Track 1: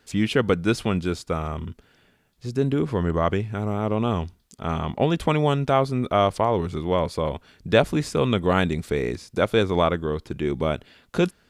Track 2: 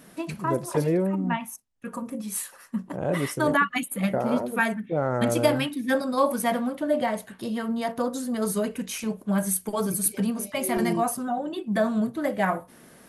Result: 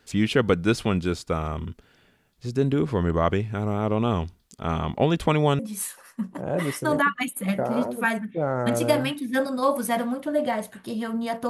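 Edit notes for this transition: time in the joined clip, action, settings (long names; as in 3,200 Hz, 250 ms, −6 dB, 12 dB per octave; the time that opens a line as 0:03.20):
track 1
0:05.59: continue with track 2 from 0:02.14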